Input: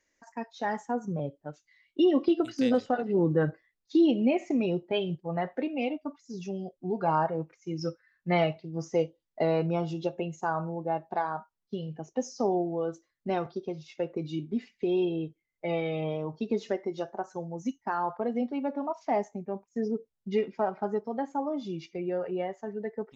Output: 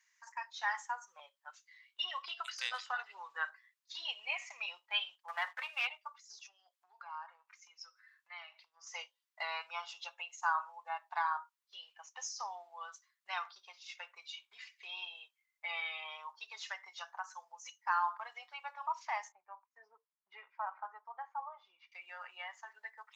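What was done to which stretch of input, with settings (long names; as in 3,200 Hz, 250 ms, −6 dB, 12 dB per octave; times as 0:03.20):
0:05.28–0:05.87: leveller curve on the samples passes 1
0:06.39–0:08.87: downward compressor 3 to 1, threshold −45 dBFS
0:19.32–0:21.92: low-pass filter 1,100 Hz
whole clip: elliptic high-pass filter 990 Hz, stop band 70 dB; level +3 dB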